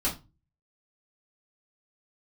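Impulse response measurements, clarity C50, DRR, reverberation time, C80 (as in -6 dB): 11.0 dB, -7.5 dB, 0.25 s, 18.0 dB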